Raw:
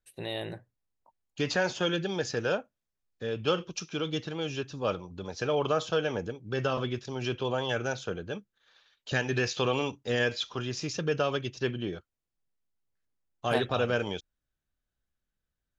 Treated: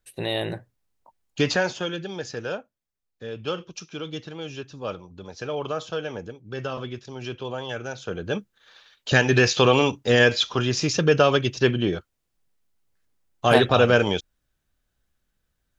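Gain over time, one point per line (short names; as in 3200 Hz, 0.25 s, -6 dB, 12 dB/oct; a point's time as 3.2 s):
1.41 s +8.5 dB
1.91 s -1.5 dB
7.94 s -1.5 dB
8.36 s +10.5 dB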